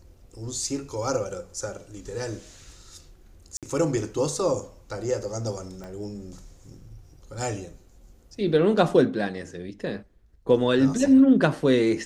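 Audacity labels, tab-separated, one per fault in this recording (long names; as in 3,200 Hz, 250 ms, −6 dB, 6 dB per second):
3.570000	3.630000	drop-out 57 ms
5.840000	5.840000	click −26 dBFS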